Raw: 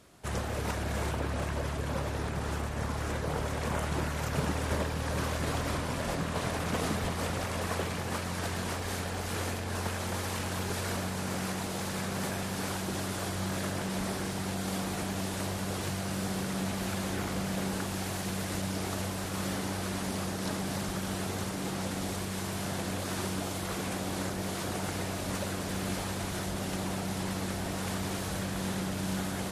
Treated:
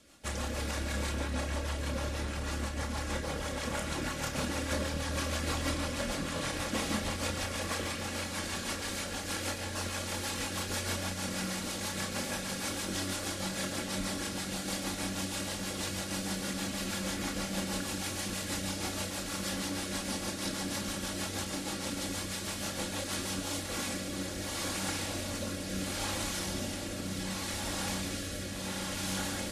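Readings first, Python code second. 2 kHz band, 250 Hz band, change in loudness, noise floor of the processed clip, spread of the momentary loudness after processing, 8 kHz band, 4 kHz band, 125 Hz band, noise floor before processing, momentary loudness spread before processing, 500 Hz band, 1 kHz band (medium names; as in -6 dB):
0.0 dB, -2.5 dB, -1.0 dB, -39 dBFS, 3 LU, +2.5 dB, +3.0 dB, -5.0 dB, -36 dBFS, 2 LU, -3.0 dB, -3.5 dB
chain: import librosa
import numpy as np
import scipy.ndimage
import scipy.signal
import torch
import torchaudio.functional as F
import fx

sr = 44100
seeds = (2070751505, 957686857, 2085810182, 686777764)

p1 = fx.rotary_switch(x, sr, hz=6.3, then_hz=0.7, switch_at_s=23.14)
p2 = fx.high_shelf(p1, sr, hz=2200.0, db=9.5)
p3 = p2 + 0.55 * np.pad(p2, (int(3.6 * sr / 1000.0), 0))[:len(p2)]
p4 = p3 + fx.echo_single(p3, sr, ms=140, db=-11.0, dry=0)
p5 = fx.chorus_voices(p4, sr, voices=6, hz=0.32, base_ms=29, depth_ms=4.4, mix_pct=30)
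y = fx.high_shelf(p5, sr, hz=11000.0, db=-9.5)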